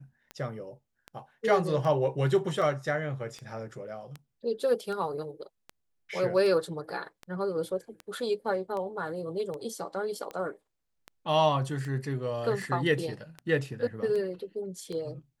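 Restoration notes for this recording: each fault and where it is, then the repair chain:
tick 78 rpm -25 dBFS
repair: de-click

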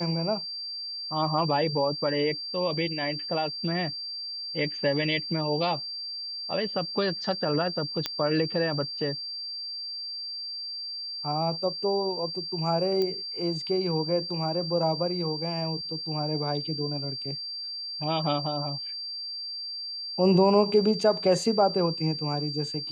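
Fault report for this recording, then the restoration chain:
tone 4700 Hz -33 dBFS
8.06 pop -12 dBFS
13.02 pop -17 dBFS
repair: de-click; notch 4700 Hz, Q 30

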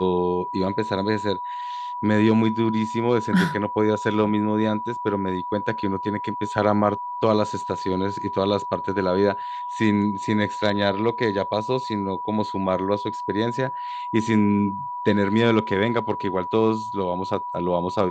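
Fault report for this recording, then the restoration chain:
tone 980 Hz -28 dBFS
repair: notch 980 Hz, Q 30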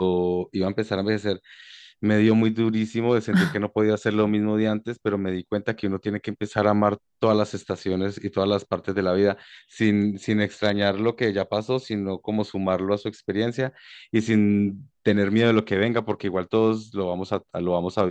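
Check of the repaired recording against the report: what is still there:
none

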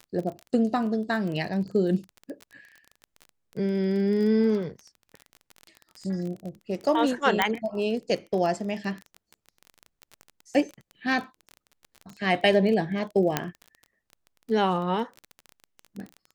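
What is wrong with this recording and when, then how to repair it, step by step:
crackle 22/s -32 dBFS
7.42 pop -7 dBFS
13.37 pop -7 dBFS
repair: de-click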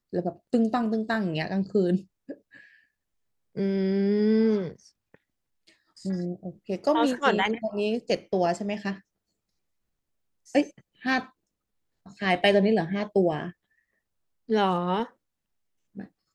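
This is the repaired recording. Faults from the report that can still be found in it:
none

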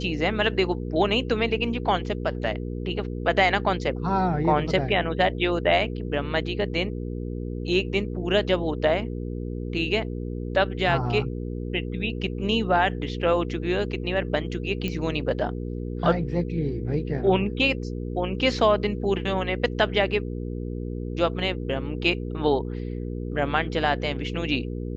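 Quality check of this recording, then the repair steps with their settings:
hum 60 Hz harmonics 8 -31 dBFS
14.88 pop -16 dBFS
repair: de-click; de-hum 60 Hz, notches 8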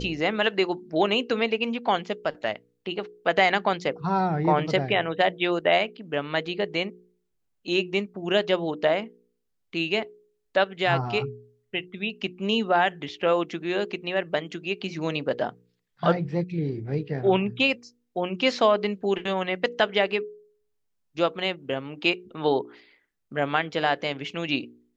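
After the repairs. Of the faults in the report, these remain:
none

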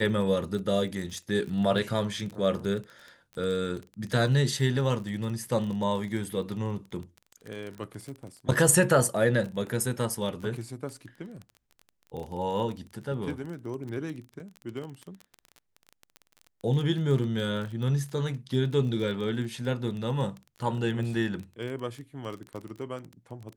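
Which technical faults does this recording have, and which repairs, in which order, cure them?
crackle 22/s -34 dBFS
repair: de-click

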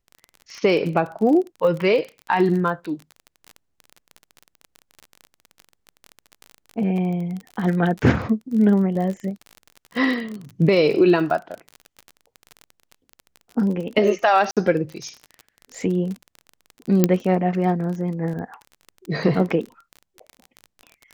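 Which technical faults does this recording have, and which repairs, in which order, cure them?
crackle 31/s -28 dBFS
14.51–14.57 gap 57 ms
17.04 pop -2 dBFS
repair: de-click; interpolate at 14.51, 57 ms

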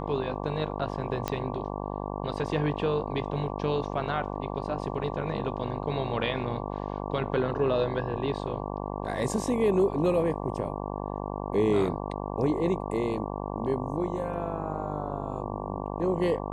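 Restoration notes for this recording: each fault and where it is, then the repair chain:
buzz 50 Hz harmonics 23 -34 dBFS
1.28 pop -13 dBFS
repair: de-click; de-hum 50 Hz, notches 23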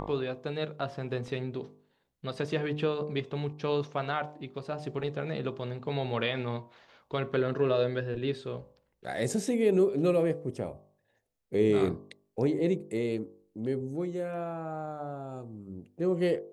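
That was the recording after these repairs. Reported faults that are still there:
none

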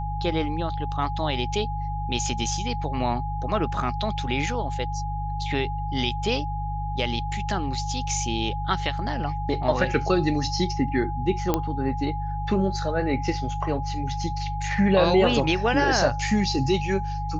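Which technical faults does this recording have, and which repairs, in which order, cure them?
hum 50 Hz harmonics 3 -30 dBFS
tone 830 Hz -31 dBFS
11.54 pop -8 dBFS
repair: de-click; notch 830 Hz, Q 30; de-hum 50 Hz, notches 3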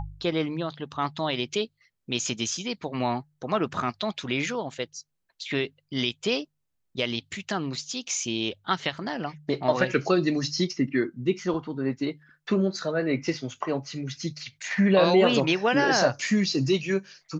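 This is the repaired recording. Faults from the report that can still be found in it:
none

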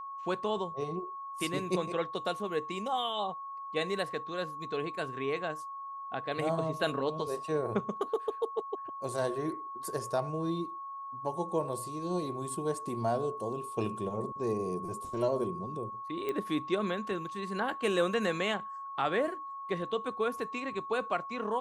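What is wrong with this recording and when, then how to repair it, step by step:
tone 1100 Hz -39 dBFS
16.29 pop -22 dBFS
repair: de-click; notch 1100 Hz, Q 30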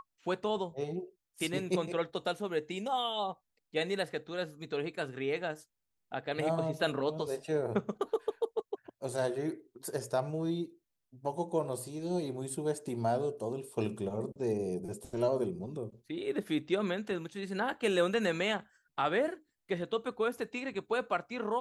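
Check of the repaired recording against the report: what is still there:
none

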